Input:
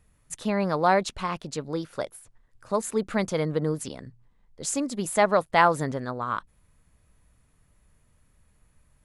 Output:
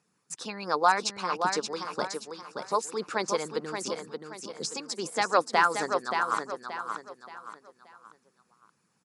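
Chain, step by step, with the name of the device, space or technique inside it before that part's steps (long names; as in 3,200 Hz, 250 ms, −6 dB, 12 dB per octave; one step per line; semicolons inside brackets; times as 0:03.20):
de-essing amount 65%
harmonic and percussive parts rebalanced harmonic −17 dB
television speaker (loudspeaker in its box 180–8,800 Hz, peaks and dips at 270 Hz −6 dB, 620 Hz −9 dB, 2,000 Hz −7 dB, 3,200 Hz −6 dB, 5,200 Hz +7 dB)
repeating echo 577 ms, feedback 36%, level −6 dB
level +4.5 dB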